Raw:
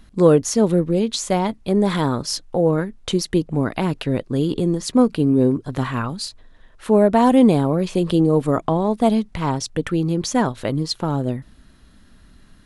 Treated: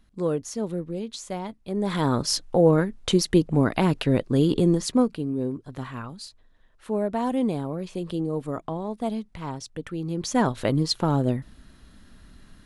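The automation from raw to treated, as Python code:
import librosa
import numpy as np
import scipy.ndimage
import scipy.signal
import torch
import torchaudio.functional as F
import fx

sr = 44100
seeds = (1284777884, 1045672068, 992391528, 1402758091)

y = fx.gain(x, sr, db=fx.line((1.65, -12.5), (2.18, 0.0), (4.78, 0.0), (5.24, -11.5), (9.95, -11.5), (10.53, -0.5)))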